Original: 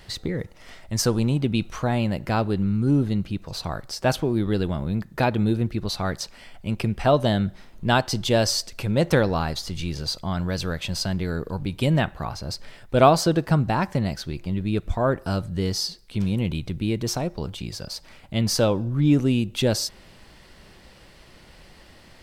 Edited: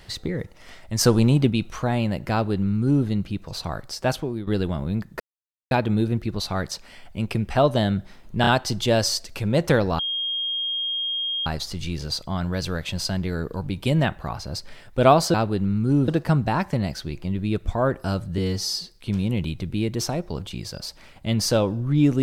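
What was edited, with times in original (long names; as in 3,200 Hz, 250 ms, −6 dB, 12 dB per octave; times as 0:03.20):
0:01.01–0:01.50: clip gain +4.5 dB
0:02.32–0:03.06: duplicate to 0:13.30
0:03.78–0:04.47: fade out equal-power, to −11 dB
0:05.20: splice in silence 0.51 s
0:07.90: stutter 0.03 s, 3 plays
0:09.42: insert tone 3,240 Hz −23.5 dBFS 1.47 s
0:15.60–0:15.89: time-stretch 1.5×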